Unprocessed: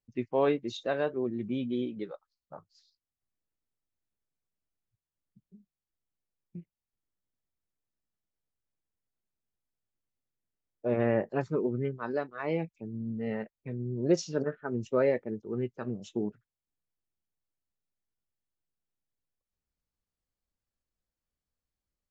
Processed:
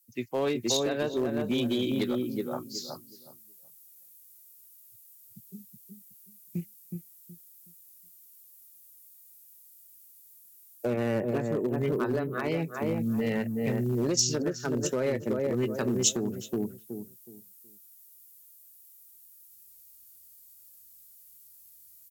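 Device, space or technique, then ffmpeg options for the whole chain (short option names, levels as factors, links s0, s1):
FM broadcast chain: -filter_complex "[0:a]asettb=1/sr,asplit=3[s0][s1][s2];[s0]atrim=end=10.934[s3];[s1]atrim=start=10.93:end=12.44,asetpts=PTS-STARTPTS,afade=t=in:d=0.004:c=qsin,afade=t=out:st=1.506:d=0.004:c=qsin,equalizer=f=5400:w=1.4:g=-15[s4];[s2]atrim=start=12.436[s5];[s3][s4]acrossfade=d=0.004:c1=hsin:c2=qsin[s6];[s6][s5]acrossfade=d=0.004:c1=qsin:c2=hsin,highpass=41,asplit=2[s7][s8];[s8]adelay=370,lowpass=f=840:p=1,volume=0.596,asplit=2[s9][s10];[s10]adelay=370,lowpass=f=840:p=1,volume=0.26,asplit=2[s11][s12];[s12]adelay=370,lowpass=f=840:p=1,volume=0.26,asplit=2[s13][s14];[s14]adelay=370,lowpass=f=840:p=1,volume=0.26[s15];[s7][s9][s11][s13][s15]amix=inputs=5:normalize=0,dynaudnorm=f=280:g=5:m=3.98,acrossover=split=120|450[s16][s17][s18];[s16]acompressor=threshold=0.0126:ratio=4[s19];[s17]acompressor=threshold=0.0562:ratio=4[s20];[s18]acompressor=threshold=0.0251:ratio=4[s21];[s19][s20][s21]amix=inputs=3:normalize=0,aemphasis=mode=production:type=75fm,alimiter=limit=0.126:level=0:latency=1:release=244,asoftclip=type=hard:threshold=0.0891,lowpass=f=15000:w=0.5412,lowpass=f=15000:w=1.3066,aemphasis=mode=production:type=75fm"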